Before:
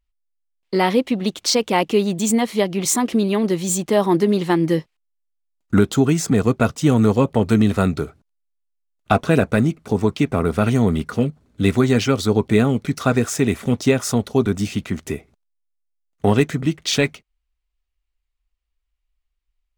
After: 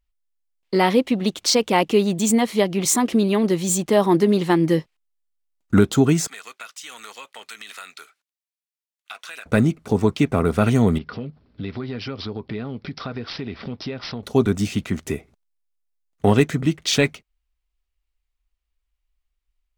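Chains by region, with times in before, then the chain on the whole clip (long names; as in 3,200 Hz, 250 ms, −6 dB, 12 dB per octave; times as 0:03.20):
0:06.27–0:09.46: Chebyshev high-pass filter 2,100 Hz + downward compressor 4 to 1, threshold −33 dBFS
0:10.98–0:14.23: downward compressor 3 to 1, threshold −30 dBFS + bad sample-rate conversion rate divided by 4×, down none, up filtered
whole clip: no processing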